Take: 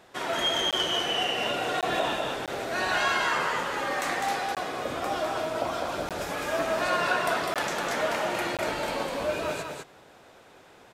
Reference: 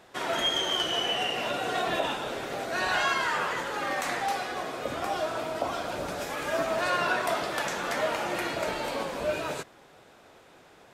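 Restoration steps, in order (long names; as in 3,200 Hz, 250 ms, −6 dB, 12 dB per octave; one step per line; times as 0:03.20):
repair the gap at 0:00.71/0:01.81/0:02.46/0:04.55/0:06.09/0:07.54/0:08.57, 17 ms
echo removal 203 ms −4 dB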